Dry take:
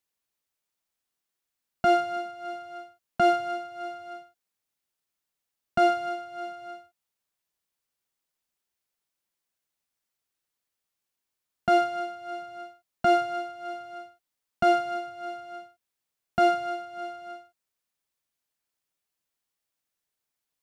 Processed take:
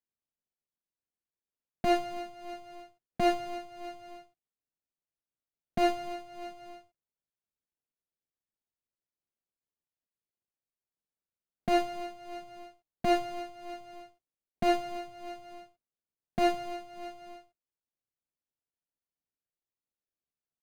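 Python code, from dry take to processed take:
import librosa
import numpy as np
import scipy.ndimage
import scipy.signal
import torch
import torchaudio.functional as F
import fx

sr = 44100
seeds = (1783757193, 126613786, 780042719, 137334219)

y = scipy.ndimage.median_filter(x, 41, mode='constant')
y = fx.noise_reduce_blind(y, sr, reduce_db=6)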